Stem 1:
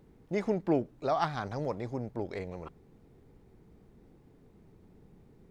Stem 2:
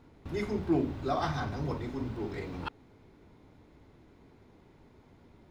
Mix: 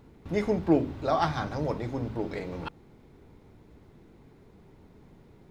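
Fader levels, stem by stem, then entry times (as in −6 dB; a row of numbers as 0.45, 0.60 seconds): +2.0, −0.5 decibels; 0.00, 0.00 seconds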